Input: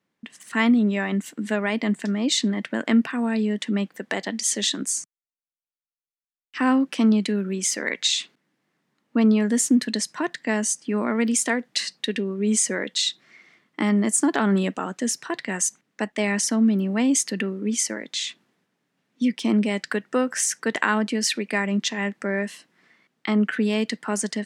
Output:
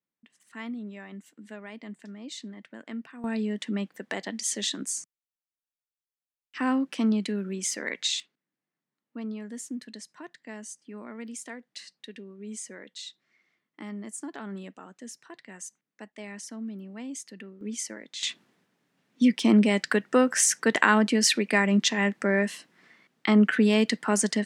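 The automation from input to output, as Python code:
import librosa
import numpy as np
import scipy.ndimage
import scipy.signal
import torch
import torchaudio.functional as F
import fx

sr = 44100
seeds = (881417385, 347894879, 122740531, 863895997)

y = fx.gain(x, sr, db=fx.steps((0.0, -18.0), (3.24, -6.0), (8.2, -17.5), (17.61, -10.0), (18.23, 1.5)))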